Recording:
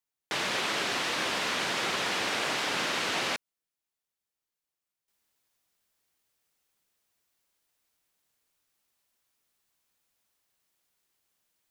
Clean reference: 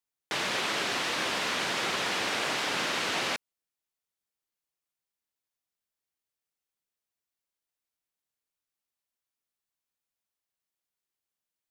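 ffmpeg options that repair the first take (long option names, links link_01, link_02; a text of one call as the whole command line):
ffmpeg -i in.wav -af "asetnsamples=nb_out_samples=441:pad=0,asendcmd='5.08 volume volume -12dB',volume=0dB" out.wav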